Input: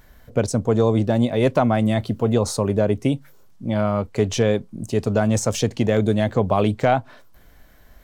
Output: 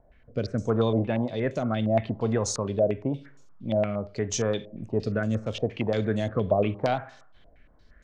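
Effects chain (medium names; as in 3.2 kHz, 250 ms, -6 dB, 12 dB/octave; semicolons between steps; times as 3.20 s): rotary cabinet horn 0.8 Hz; Schroeder reverb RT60 0.5 s, combs from 28 ms, DRR 14 dB; step-sequenced low-pass 8.6 Hz 660–6600 Hz; trim -6.5 dB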